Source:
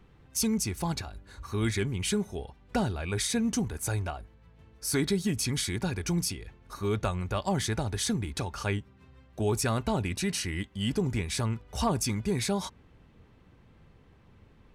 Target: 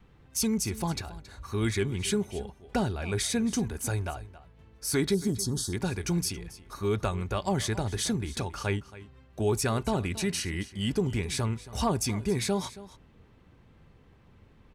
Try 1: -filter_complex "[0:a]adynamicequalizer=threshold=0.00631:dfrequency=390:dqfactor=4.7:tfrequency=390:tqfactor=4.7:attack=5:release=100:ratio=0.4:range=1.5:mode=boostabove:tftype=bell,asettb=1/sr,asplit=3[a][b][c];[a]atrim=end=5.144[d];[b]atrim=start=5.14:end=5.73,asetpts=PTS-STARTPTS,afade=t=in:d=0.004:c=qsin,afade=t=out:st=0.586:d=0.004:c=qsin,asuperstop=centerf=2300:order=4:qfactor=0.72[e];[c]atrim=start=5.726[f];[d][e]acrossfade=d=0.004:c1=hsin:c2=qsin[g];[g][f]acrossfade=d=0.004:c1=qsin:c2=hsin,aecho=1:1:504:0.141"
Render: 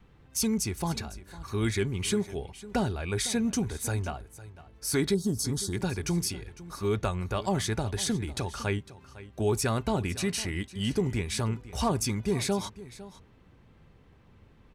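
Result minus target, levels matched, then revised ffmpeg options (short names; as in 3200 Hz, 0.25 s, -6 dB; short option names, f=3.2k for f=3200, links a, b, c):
echo 0.23 s late
-filter_complex "[0:a]adynamicequalizer=threshold=0.00631:dfrequency=390:dqfactor=4.7:tfrequency=390:tqfactor=4.7:attack=5:release=100:ratio=0.4:range=1.5:mode=boostabove:tftype=bell,asettb=1/sr,asplit=3[a][b][c];[a]atrim=end=5.144[d];[b]atrim=start=5.14:end=5.73,asetpts=PTS-STARTPTS,afade=t=in:d=0.004:c=qsin,afade=t=out:st=0.586:d=0.004:c=qsin,asuperstop=centerf=2300:order=4:qfactor=0.72[e];[c]atrim=start=5.726[f];[d][e]acrossfade=d=0.004:c1=hsin:c2=qsin[g];[g][f]acrossfade=d=0.004:c1=qsin:c2=hsin,aecho=1:1:274:0.141"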